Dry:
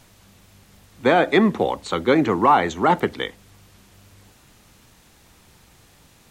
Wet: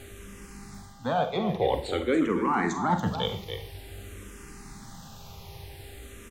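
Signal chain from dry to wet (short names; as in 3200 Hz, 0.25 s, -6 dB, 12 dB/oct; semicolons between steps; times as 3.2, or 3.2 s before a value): low shelf 170 Hz +8 dB; reverse; compressor 6:1, threshold -28 dBFS, peak gain reduction 17 dB; reverse; Schroeder reverb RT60 0.44 s, combs from 33 ms, DRR 7.5 dB; buzz 400 Hz, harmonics 26, -57 dBFS -7 dB/oct; on a send: echo 0.284 s -10 dB; on the sum: endless phaser -0.5 Hz; gain +6.5 dB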